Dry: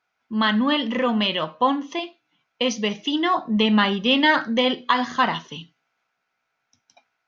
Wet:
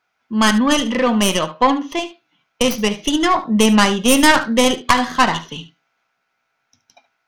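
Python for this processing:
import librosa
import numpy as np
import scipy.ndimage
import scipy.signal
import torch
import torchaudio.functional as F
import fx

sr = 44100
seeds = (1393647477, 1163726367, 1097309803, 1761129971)

p1 = fx.tracing_dist(x, sr, depth_ms=0.17)
p2 = p1 + fx.echo_single(p1, sr, ms=73, db=-15.5, dry=0)
y = p2 * 10.0 ** (5.0 / 20.0)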